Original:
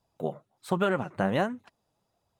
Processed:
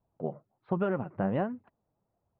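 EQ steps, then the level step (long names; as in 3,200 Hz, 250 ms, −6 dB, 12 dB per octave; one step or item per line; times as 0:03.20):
dynamic equaliser 2,700 Hz, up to +5 dB, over −53 dBFS, Q 3.1
high-frequency loss of the air 370 metres
head-to-tape spacing loss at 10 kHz 44 dB
0.0 dB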